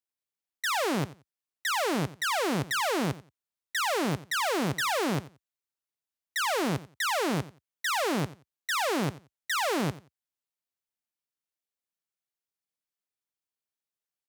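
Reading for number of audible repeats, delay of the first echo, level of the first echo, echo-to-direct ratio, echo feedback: 2, 89 ms, -17.5 dB, -17.5 dB, 18%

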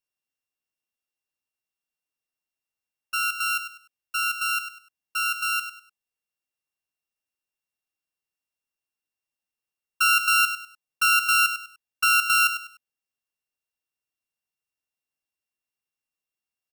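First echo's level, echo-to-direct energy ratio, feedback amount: -10.0 dB, -9.5 dB, 28%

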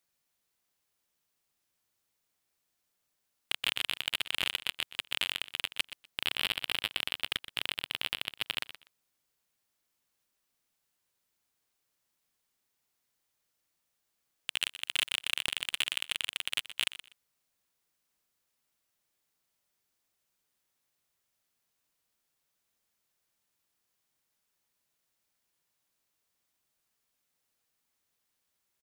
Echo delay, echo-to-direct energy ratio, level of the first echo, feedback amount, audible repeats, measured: 0.123 s, -14.0 dB, -14.0 dB, 20%, 2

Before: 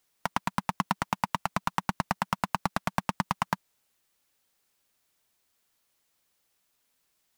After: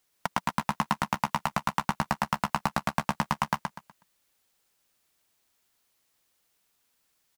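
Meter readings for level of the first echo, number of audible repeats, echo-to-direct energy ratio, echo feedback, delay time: -4.5 dB, 3, -4.0 dB, 28%, 0.123 s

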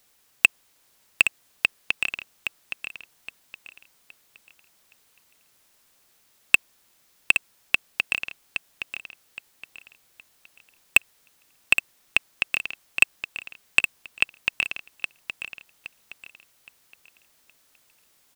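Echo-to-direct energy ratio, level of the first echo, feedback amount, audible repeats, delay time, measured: -8.0 dB, -8.5 dB, 31%, 3, 0.818 s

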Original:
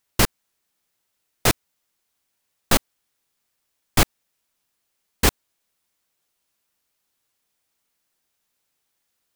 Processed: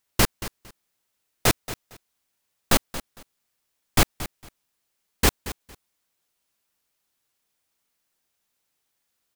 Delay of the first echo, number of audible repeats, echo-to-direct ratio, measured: 0.228 s, 2, -14.5 dB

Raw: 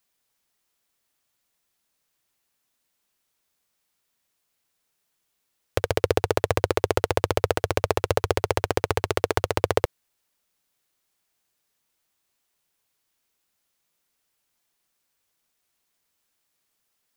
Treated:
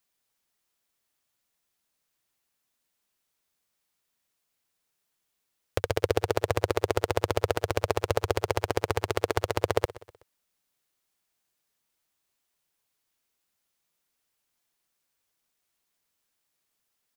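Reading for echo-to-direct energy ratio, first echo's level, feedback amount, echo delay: -18.5 dB, -19.5 dB, 43%, 0.125 s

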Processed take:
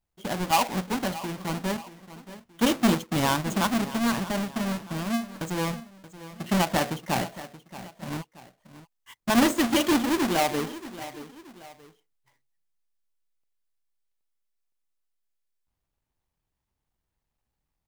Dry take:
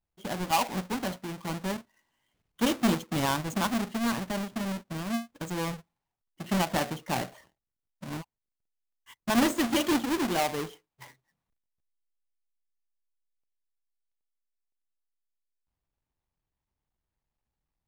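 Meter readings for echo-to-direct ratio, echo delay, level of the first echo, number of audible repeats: -15.0 dB, 0.628 s, -15.5 dB, 2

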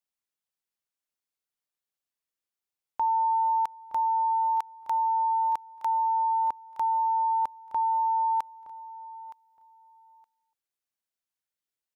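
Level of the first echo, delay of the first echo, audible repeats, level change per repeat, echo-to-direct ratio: -17.0 dB, 0.918 s, 2, -15.5 dB, -17.0 dB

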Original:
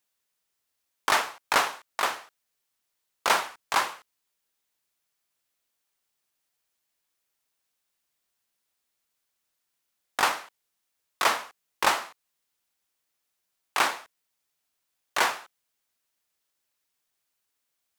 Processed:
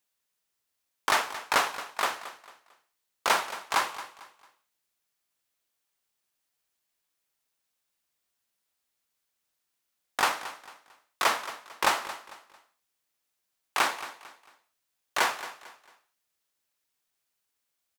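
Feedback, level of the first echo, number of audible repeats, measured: 33%, -14.5 dB, 3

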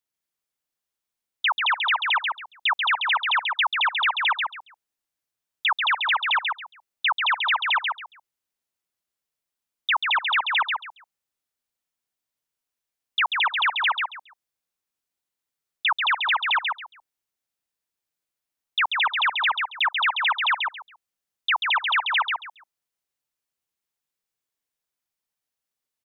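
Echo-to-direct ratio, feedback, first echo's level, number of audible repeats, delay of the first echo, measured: -4.5 dB, 21%, -4.5 dB, 3, 0.138 s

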